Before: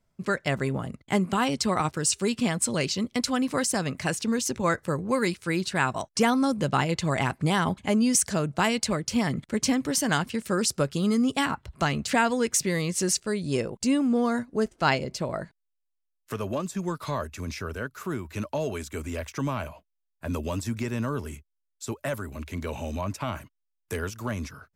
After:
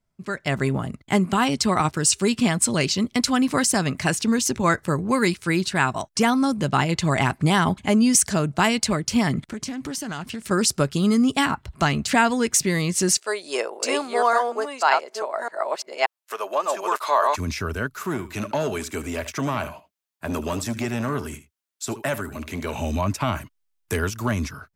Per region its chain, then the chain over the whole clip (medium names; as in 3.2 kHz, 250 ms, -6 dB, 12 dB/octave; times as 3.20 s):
9.40–10.51 s: compression, threshold -34 dBFS + loudspeaker Doppler distortion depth 0.15 ms
13.17–17.36 s: chunks repeated in reverse 578 ms, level -2 dB + high-pass 450 Hz 24 dB/octave + dynamic bell 880 Hz, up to +8 dB, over -41 dBFS, Q 0.86
17.95–22.79 s: high-pass 170 Hz 6 dB/octave + delay 76 ms -15 dB + transformer saturation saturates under 480 Hz
whole clip: peaking EQ 510 Hz -6.5 dB 0.25 oct; level rider gain up to 11.5 dB; trim -4 dB